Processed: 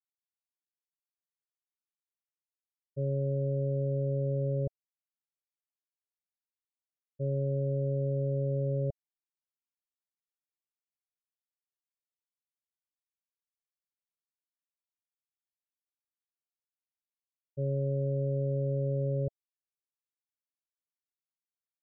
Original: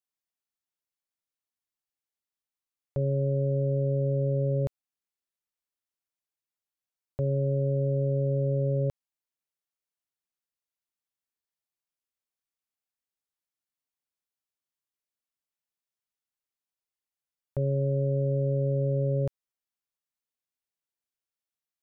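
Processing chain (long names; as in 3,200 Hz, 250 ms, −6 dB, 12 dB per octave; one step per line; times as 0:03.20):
downward expander −22 dBFS
Butterworth low-pass 670 Hz 96 dB per octave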